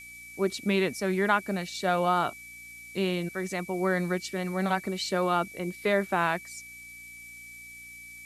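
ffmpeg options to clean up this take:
-af "adeclick=t=4,bandreject=f=59.1:t=h:w=4,bandreject=f=118.2:t=h:w=4,bandreject=f=177.3:t=h:w=4,bandreject=f=236.4:t=h:w=4,bandreject=f=295.5:t=h:w=4,bandreject=f=2.3k:w=30,afftdn=nr=28:nf=-46"

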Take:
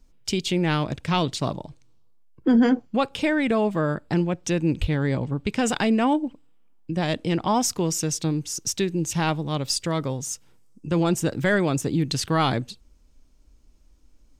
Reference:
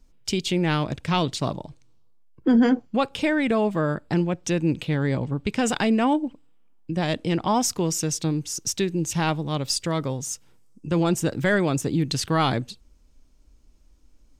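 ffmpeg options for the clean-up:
-filter_complex "[0:a]asplit=3[a][b][c];[a]afade=t=out:st=4.8:d=0.02[d];[b]highpass=f=140:w=0.5412,highpass=f=140:w=1.3066,afade=t=in:st=4.8:d=0.02,afade=t=out:st=4.92:d=0.02[e];[c]afade=t=in:st=4.92:d=0.02[f];[d][e][f]amix=inputs=3:normalize=0"

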